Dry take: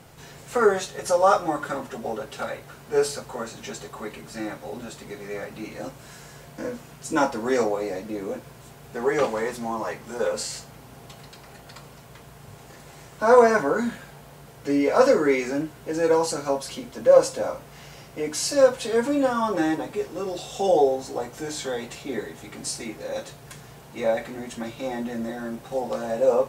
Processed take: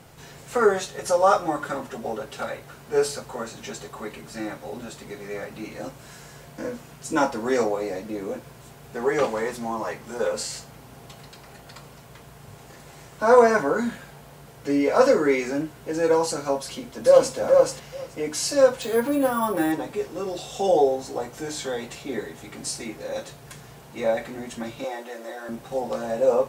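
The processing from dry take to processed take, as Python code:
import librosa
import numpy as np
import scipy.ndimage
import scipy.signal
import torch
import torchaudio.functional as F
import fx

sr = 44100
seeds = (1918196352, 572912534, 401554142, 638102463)

y = fx.echo_throw(x, sr, start_s=16.61, length_s=0.75, ms=430, feedback_pct=10, wet_db=-2.0)
y = fx.resample_bad(y, sr, factor=4, down='filtered', up='hold', at=(18.82, 19.72))
y = fx.highpass(y, sr, hz=390.0, slope=24, at=(24.84, 25.49))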